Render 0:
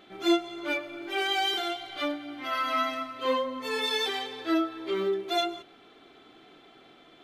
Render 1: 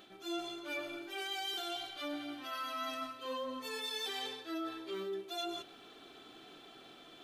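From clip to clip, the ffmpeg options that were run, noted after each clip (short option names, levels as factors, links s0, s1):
-af "highshelf=f=4400:g=11,bandreject=f=2100:w=11,areverse,acompressor=threshold=0.0158:ratio=6,areverse,volume=0.794"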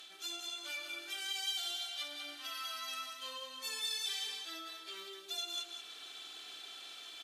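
-af "alimiter=level_in=4.73:limit=0.0631:level=0:latency=1:release=439,volume=0.211,bandpass=f=7400:t=q:w=0.71:csg=0,aecho=1:1:49.56|189.5:0.282|0.501,volume=4.47"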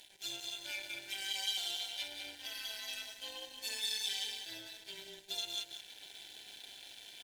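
-af "aeval=exprs='sgn(val(0))*max(abs(val(0))-0.00188,0)':c=same,tremolo=f=210:d=0.71,asuperstop=centerf=1200:order=8:qfactor=2.8,volume=1.78"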